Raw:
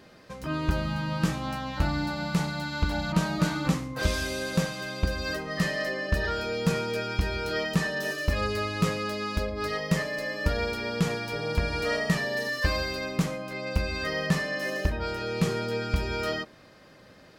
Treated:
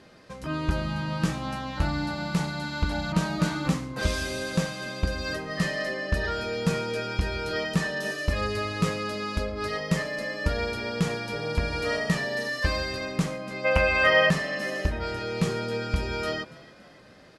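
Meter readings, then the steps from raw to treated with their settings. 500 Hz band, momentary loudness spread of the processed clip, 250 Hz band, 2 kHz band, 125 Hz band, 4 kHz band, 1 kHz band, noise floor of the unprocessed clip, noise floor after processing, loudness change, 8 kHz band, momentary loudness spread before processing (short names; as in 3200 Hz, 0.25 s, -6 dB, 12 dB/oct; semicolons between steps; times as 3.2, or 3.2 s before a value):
+1.5 dB, 6 LU, 0.0 dB, +2.5 dB, 0.0 dB, +1.0 dB, +1.5 dB, -53 dBFS, -51 dBFS, +1.0 dB, 0.0 dB, 4 LU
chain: steep low-pass 12000 Hz 96 dB/oct; spectral gain 13.65–14.3, 480–3300 Hz +12 dB; on a send: frequency-shifting echo 0.284 s, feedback 50%, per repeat +43 Hz, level -21 dB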